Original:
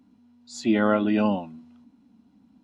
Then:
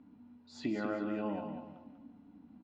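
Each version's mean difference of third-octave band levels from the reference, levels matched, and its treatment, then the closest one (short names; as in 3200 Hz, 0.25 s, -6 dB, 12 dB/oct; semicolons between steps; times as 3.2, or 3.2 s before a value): 7.5 dB: LPF 2300 Hz 12 dB/oct; compressor 6:1, threshold -34 dBFS, peak gain reduction 16.5 dB; feedback echo 0.193 s, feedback 34%, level -7 dB; FDN reverb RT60 0.75 s, high-frequency decay 0.6×, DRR 9 dB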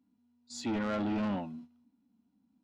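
3.5 dB: gate -47 dBFS, range -14 dB; harmonic-percussive split percussive -6 dB; limiter -17 dBFS, peak gain reduction 6 dB; soft clip -29 dBFS, distortion -8 dB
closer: second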